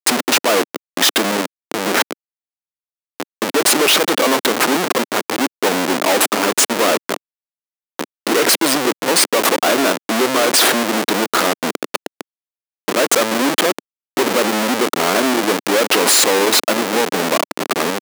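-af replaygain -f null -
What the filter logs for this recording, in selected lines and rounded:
track_gain = -2.8 dB
track_peak = 0.544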